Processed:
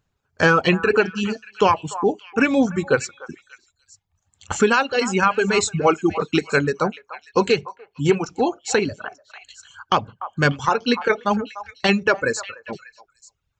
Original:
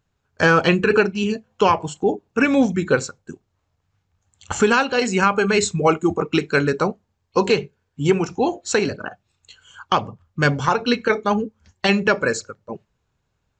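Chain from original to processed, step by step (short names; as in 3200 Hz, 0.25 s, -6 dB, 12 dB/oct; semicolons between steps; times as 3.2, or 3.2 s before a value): reverb removal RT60 1.1 s; delay with a stepping band-pass 0.295 s, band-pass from 960 Hz, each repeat 1.4 oct, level -11 dB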